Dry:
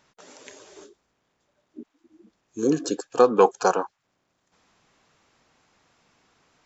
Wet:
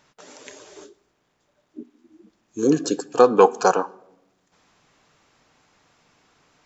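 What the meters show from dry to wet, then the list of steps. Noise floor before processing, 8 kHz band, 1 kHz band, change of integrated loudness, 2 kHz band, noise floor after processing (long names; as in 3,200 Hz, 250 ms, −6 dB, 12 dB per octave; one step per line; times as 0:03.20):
−75 dBFS, can't be measured, +3.0 dB, +3.0 dB, +3.5 dB, −70 dBFS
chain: rectangular room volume 3,400 cubic metres, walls furnished, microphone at 0.4 metres
level +3 dB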